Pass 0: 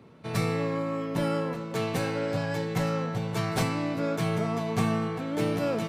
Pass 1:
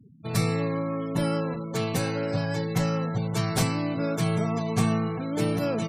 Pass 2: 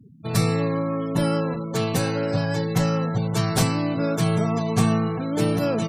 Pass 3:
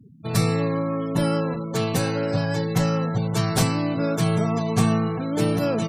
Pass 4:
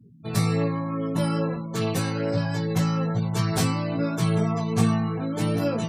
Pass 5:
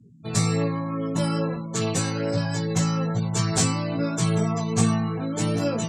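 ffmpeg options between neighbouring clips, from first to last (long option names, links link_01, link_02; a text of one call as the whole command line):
ffmpeg -i in.wav -af "bass=frequency=250:gain=4,treble=frequency=4000:gain=8,afftfilt=real='re*gte(hypot(re,im),0.0141)':imag='im*gte(hypot(re,im),0.0141)':win_size=1024:overlap=0.75" out.wav
ffmpeg -i in.wav -af "equalizer=frequency=2200:width_type=o:width=0.22:gain=-4,volume=4dB" out.wav
ffmpeg -i in.wav -af anull out.wav
ffmpeg -i in.wav -af "flanger=delay=17:depth=2.1:speed=1.2" out.wav
ffmpeg -i in.wav -af "lowpass=frequency=7400:width_type=q:width=4.1" out.wav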